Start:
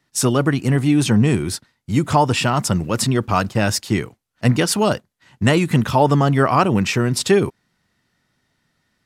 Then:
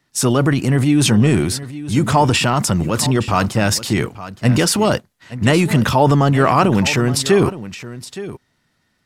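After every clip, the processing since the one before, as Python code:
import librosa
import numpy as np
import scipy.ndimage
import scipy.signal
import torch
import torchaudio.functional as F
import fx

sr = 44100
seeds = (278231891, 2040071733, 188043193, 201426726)

y = fx.transient(x, sr, attack_db=-1, sustain_db=7)
y = y + 10.0 ** (-15.0 / 20.0) * np.pad(y, (int(869 * sr / 1000.0), 0))[:len(y)]
y = y * librosa.db_to_amplitude(1.5)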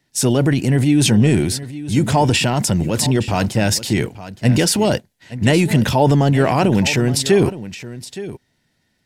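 y = fx.peak_eq(x, sr, hz=1200.0, db=-13.0, octaves=0.42)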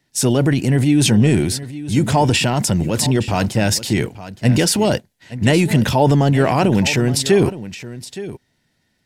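y = x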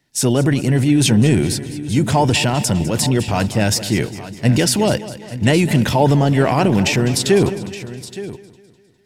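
y = fx.echo_feedback(x, sr, ms=203, feedback_pct=52, wet_db=-15.5)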